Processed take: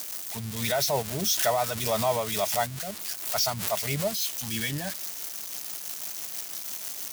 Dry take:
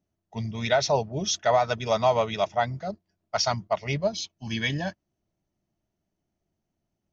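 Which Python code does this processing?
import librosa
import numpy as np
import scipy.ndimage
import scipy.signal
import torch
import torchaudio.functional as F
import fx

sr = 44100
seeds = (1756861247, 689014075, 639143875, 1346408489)

y = x + 0.5 * 10.0 ** (-18.0 / 20.0) * np.diff(np.sign(x), prepend=np.sign(x[:1]))
y = y * (1.0 - 0.37 / 2.0 + 0.37 / 2.0 * np.cos(2.0 * np.pi * 6.1 * (np.arange(len(y)) / sr)))
y = fx.pre_swell(y, sr, db_per_s=65.0)
y = y * 10.0 ** (-2.5 / 20.0)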